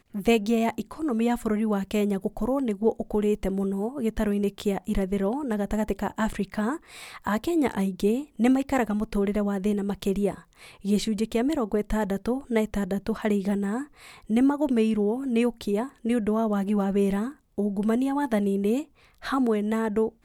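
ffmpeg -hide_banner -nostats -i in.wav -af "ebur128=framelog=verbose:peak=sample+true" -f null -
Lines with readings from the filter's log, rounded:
Integrated loudness:
  I:         -26.3 LUFS
  Threshold: -36.4 LUFS
Loudness range:
  LRA:         2.1 LU
  Threshold: -46.5 LUFS
  LRA low:   -27.8 LUFS
  LRA high:  -25.6 LUFS
Sample peak:
  Peak:      -10.1 dBFS
True peak:
  Peak:      -10.0 dBFS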